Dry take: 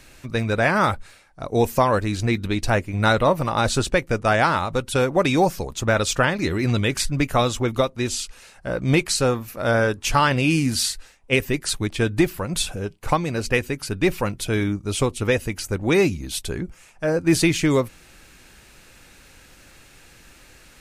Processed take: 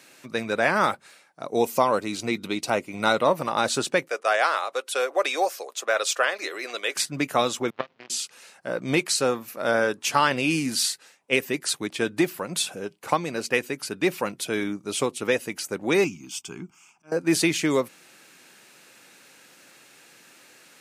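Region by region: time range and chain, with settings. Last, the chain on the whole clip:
1.57–3.21 s: band-stop 1.7 kHz, Q 5.1 + tape noise reduction on one side only encoder only
4.08–6.96 s: high-pass 460 Hz 24 dB/octave + band-stop 900 Hz, Q 7.1
7.70–8.10 s: one-bit delta coder 16 kbps, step -20.5 dBFS + bass shelf 110 Hz +7.5 dB + power-law waveshaper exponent 3
16.04–17.12 s: slow attack 400 ms + static phaser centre 2.7 kHz, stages 8
whole clip: high-pass 150 Hz 24 dB/octave; tone controls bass -6 dB, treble +1 dB; trim -2 dB

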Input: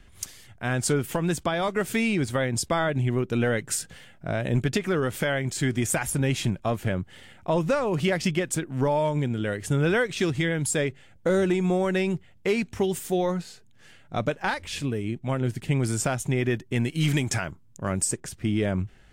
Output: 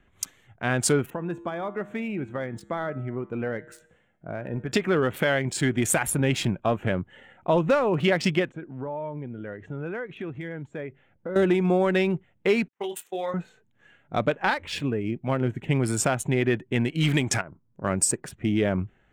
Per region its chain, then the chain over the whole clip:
1.10–4.72 s: treble shelf 2.5 kHz -6 dB + feedback comb 68 Hz, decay 1.1 s, harmonics odd + tape noise reduction on one side only decoder only
8.49–11.36 s: compression 2:1, threshold -41 dBFS + distance through air 150 m
12.68–13.34 s: high-pass 1.3 kHz 6 dB/octave + gate -38 dBFS, range -37 dB + doubling 24 ms -5.5 dB
17.41–17.84 s: low-pass 1.4 kHz + compression 12:1, threshold -37 dBFS
whole clip: local Wiener filter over 9 samples; spectral noise reduction 7 dB; bass shelf 110 Hz -10 dB; trim +3.5 dB

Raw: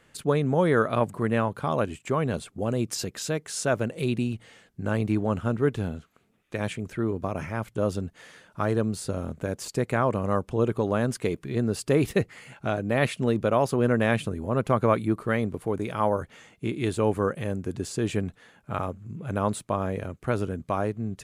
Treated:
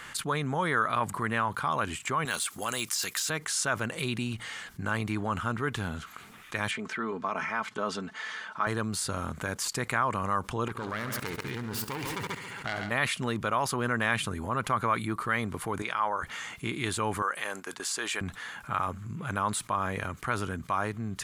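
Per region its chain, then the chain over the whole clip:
2.25–3.30 s: de-esser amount 95% + tilt EQ +4 dB/octave
6.71–8.67 s: high-pass 240 Hz + distance through air 100 m + comb 4.6 ms, depth 49%
10.68–12.91 s: self-modulated delay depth 0.27 ms + multi-head delay 69 ms, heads first and second, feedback 51%, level -13 dB + level held to a coarse grid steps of 17 dB
15.82–16.23 s: high-pass 580 Hz 6 dB/octave + distance through air 69 m
17.22–18.21 s: high-pass 550 Hz + gate -47 dBFS, range -10 dB
whole clip: resonant low shelf 770 Hz -10 dB, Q 1.5; band-stop 2.6 kHz, Q 19; level flattener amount 50%; trim -3 dB

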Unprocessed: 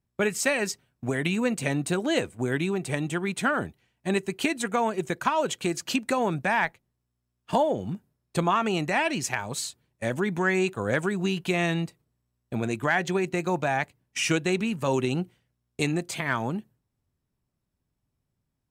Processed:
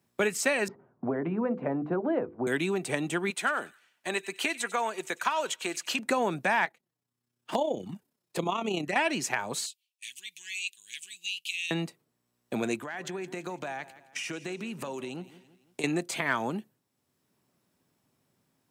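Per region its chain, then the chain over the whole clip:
0.68–2.47 s: low-pass 1.2 kHz 24 dB/octave + hum notches 50/100/150/200/250/300/350/400/450/500 Hz + three bands compressed up and down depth 40%
3.30–5.99 s: high-pass 930 Hz 6 dB/octave + feedback echo behind a high-pass 95 ms, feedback 31%, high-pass 2.2 kHz, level -15 dB
6.65–8.96 s: touch-sensitive flanger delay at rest 7.9 ms, full sweep at -22.5 dBFS + AM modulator 32 Hz, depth 40%
9.66–11.71 s: elliptic high-pass 2.7 kHz, stop band 50 dB + tape noise reduction on one side only decoder only
12.76–15.84 s: compression 10:1, threshold -35 dBFS + feedback delay 168 ms, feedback 36%, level -18 dB
whole clip: high-pass 220 Hz 12 dB/octave; three bands compressed up and down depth 40%

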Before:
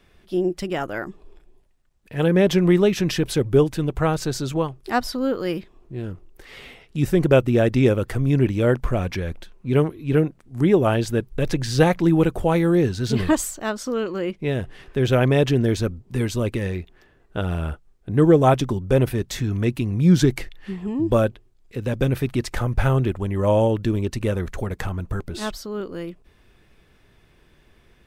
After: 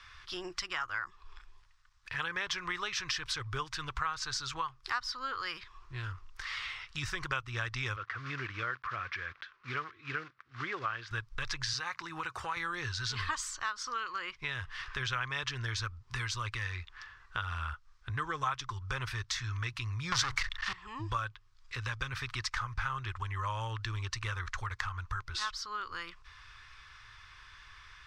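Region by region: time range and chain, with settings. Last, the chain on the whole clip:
7.96–11.11 s: block-companded coder 5-bit + band-pass 210–2000 Hz + peaking EQ 910 Hz -10 dB 0.53 oct
11.73–12.57 s: high-pass 140 Hz + band-stop 3.3 kHz, Q 8.4 + compression, threshold -20 dBFS
20.12–20.73 s: peaking EQ 360 Hz -4.5 dB 0.27 oct + waveshaping leveller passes 5
whole clip: FFT filter 110 Hz 0 dB, 190 Hz -23 dB, 350 Hz -17 dB, 660 Hz -13 dB, 1.1 kHz +15 dB, 2.7 kHz +8 dB, 5.4 kHz +13 dB, 13 kHz -13 dB; compression 3:1, threshold -35 dBFS; trim -2 dB

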